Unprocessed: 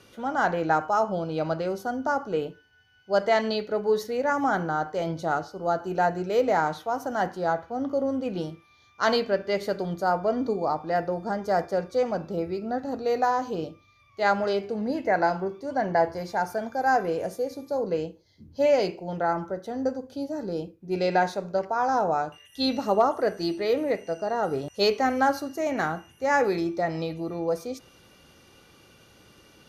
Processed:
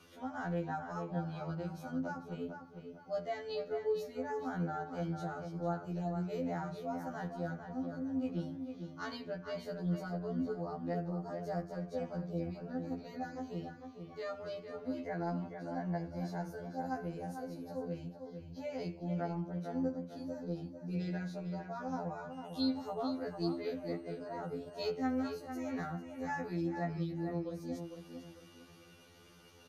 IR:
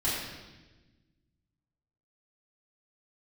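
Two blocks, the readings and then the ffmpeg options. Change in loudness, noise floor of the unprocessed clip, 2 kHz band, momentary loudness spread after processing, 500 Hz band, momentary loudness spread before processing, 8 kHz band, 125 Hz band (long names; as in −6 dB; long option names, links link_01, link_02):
−13.0 dB, −58 dBFS, −17.0 dB, 7 LU, −15.0 dB, 8 LU, can't be measured, −3.0 dB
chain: -filter_complex "[0:a]acrossover=split=230[link_01][link_02];[link_02]acompressor=threshold=-43dB:ratio=2[link_03];[link_01][link_03]amix=inputs=2:normalize=0,asplit=2[link_04][link_05];[link_05]adelay=450,lowpass=frequency=3500:poles=1,volume=-7dB,asplit=2[link_06][link_07];[link_07]adelay=450,lowpass=frequency=3500:poles=1,volume=0.34,asplit=2[link_08][link_09];[link_09]adelay=450,lowpass=frequency=3500:poles=1,volume=0.34,asplit=2[link_10][link_11];[link_11]adelay=450,lowpass=frequency=3500:poles=1,volume=0.34[link_12];[link_04][link_06][link_08][link_10][link_12]amix=inputs=5:normalize=0,afftfilt=real='re*2*eq(mod(b,4),0)':imag='im*2*eq(mod(b,4),0)':win_size=2048:overlap=0.75,volume=-3.5dB"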